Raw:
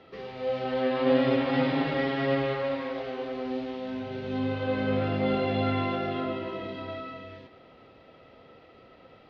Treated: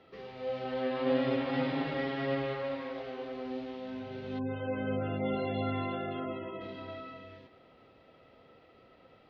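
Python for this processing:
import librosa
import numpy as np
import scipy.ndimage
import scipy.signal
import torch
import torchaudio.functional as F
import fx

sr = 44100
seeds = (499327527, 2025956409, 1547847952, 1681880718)

y = fx.spec_gate(x, sr, threshold_db=-25, keep='strong', at=(4.38, 6.6), fade=0.02)
y = y * 10.0 ** (-6.0 / 20.0)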